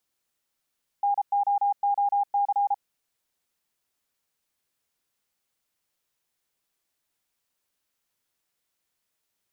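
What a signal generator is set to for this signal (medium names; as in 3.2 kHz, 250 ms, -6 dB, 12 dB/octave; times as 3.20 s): Morse "NOOC" 33 wpm 809 Hz -20 dBFS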